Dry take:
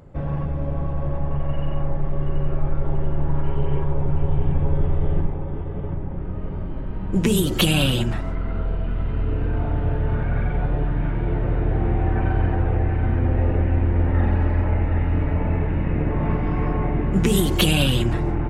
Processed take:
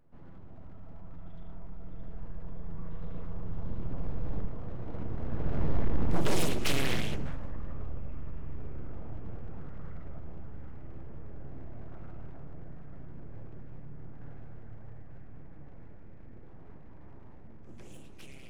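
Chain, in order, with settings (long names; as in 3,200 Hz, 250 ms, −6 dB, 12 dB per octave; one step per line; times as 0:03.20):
fade-out on the ending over 0.80 s
source passing by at 0:05.84, 53 m/s, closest 15 metres
low-shelf EQ 86 Hz +5.5 dB
full-wave rectification
flanger 0.71 Hz, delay 6 ms, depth 3.6 ms, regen +85%
hard clipping −21 dBFS, distortion −19 dB
echo ahead of the sound 152 ms −17 dB
highs frequency-modulated by the lows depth 1 ms
level +5 dB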